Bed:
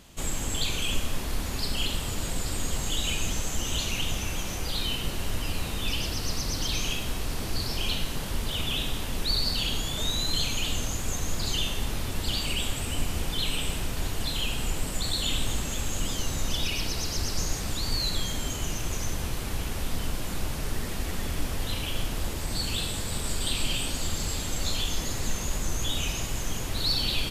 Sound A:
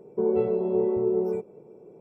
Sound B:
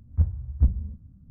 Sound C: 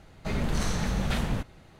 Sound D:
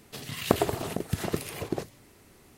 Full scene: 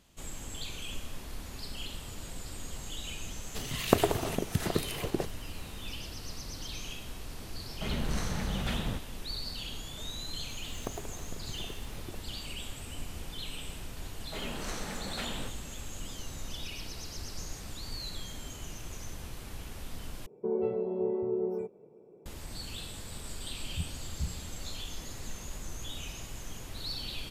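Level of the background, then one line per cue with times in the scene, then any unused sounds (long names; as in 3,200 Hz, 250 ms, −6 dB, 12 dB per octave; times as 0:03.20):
bed −11.5 dB
0:03.42: mix in D −0.5 dB
0:07.56: mix in C −5 dB
0:10.36: mix in D −16.5 dB + bad sample-rate conversion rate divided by 4×, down filtered, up hold
0:14.07: mix in C −6 dB + high-pass filter 270 Hz
0:20.26: overwrite with A −7 dB
0:23.59: mix in B −17 dB + low-pass with resonance 170 Hz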